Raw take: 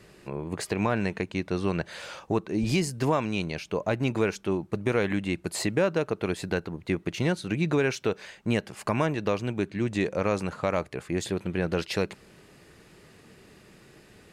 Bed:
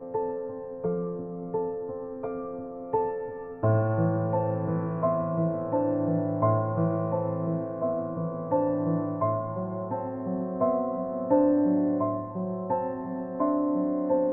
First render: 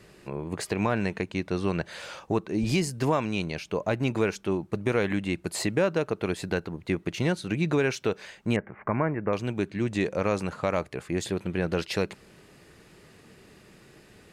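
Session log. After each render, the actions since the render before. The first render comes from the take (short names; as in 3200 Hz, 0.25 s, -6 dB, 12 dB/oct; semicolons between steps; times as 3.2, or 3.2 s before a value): 8.56–9.33 Chebyshev low-pass 2200 Hz, order 5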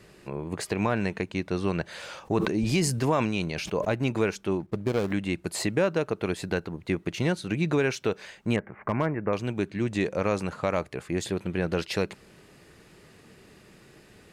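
2.2–3.89 sustainer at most 39 dB/s; 4.6–5.12 median filter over 41 samples; 8.57–9.2 hard clip -18 dBFS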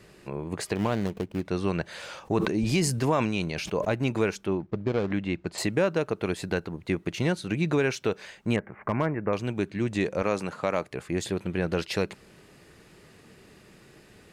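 0.75–1.45 median filter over 25 samples; 4.46–5.58 air absorption 130 m; 10.22–10.91 Bessel high-pass 160 Hz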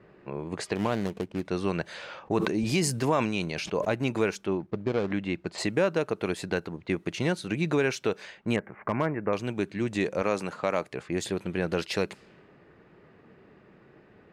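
low-pass opened by the level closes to 1400 Hz, open at -26 dBFS; low shelf 82 Hz -11 dB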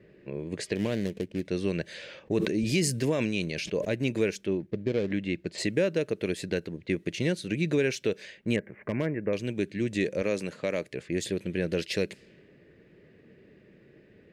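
band shelf 1000 Hz -13.5 dB 1.2 oct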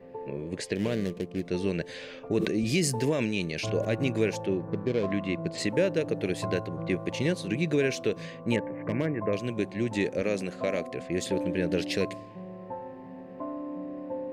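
add bed -10.5 dB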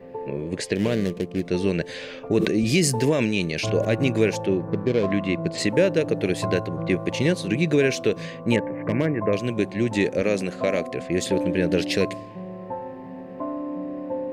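gain +6 dB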